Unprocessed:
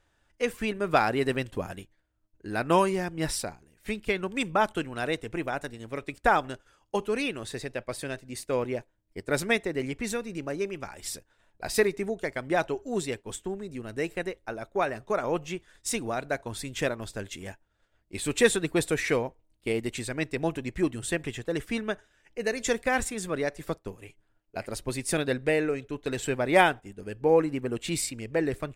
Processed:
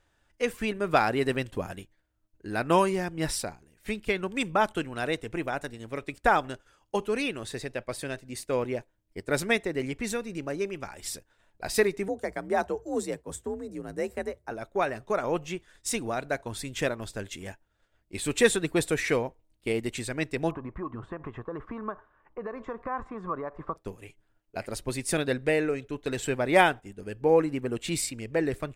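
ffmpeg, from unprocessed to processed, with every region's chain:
-filter_complex "[0:a]asettb=1/sr,asplit=3[a][b][c];[a]atrim=end=12.084[d];[b]atrim=start=12.08:end=14.51,asetpts=PTS-STARTPTS,afade=t=in:d=0.004:c=qsin,afade=t=out:st=2.426:d=0.004:c=qsin,equalizer=f=2.9k:t=o:w=1.1:g=-10.5,afreqshift=50[e];[c]atrim=start=14.506[f];[d][e]acrossfade=d=0.004:c1=hsin:c2=qsin[g];[g][f]acrossfade=d=0.004:c1=qsin:c2=hsin,asettb=1/sr,asplit=3[h][i][j];[h]atrim=end=20.514[k];[i]atrim=start=20.51:end=23.76,asetpts=PTS-STARTPTS,afade=t=in:d=0.004:c=qsin,afade=t=out:st=3.246:d=0.004:c=qsin,acompressor=threshold=-33dB:ratio=6:attack=3.2:release=140:knee=1:detection=peak,lowpass=f=1.1k:t=q:w=9.1[l];[j]atrim=start=23.756[m];[k][l]acrossfade=d=0.004:c1=hsin:c2=qsin[n];[n][m]acrossfade=d=0.004:c1=qsin:c2=hsin"

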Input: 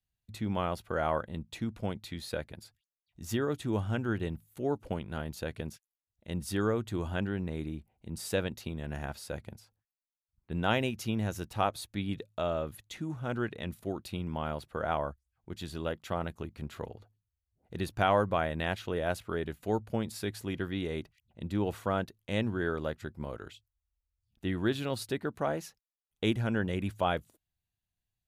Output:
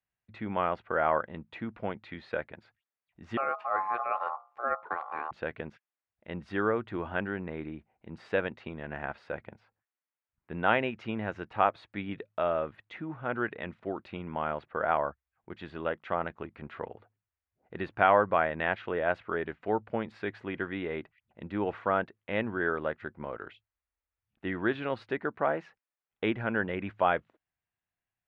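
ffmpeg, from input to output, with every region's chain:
-filter_complex "[0:a]asettb=1/sr,asplit=3[a][b][c];[a]atrim=end=3.374[d];[b]atrim=start=3.37:end=5.31,asetpts=PTS-STARTPTS,afade=t=in:d=0.004:c=qsin,afade=t=out:st=1.936:d=0.004:c=qsin,equalizer=f=2.6k:w=0.34:g=-6,bandreject=f=60:t=h:w=6,bandreject=f=120:t=h:w=6,bandreject=f=180:t=h:w=6,bandreject=f=240:t=h:w=6,bandreject=f=300:t=h:w=6,bandreject=f=360:t=h:w=6,bandreject=f=420:t=h:w=6,bandreject=f=480:t=h:w=6,aeval=exprs='val(0)*sin(2*PI*950*n/s)':c=same[e];[c]atrim=start=5.306[f];[d][e]acrossfade=d=0.004:c1=hsin:c2=qsin[g];[g][f]acrossfade=d=0.004:c1=qsin:c2=hsin,lowpass=f=2.1k:w=0.5412,lowpass=f=2.1k:w=1.3066,aemphasis=mode=production:type=riaa,volume=5dB"

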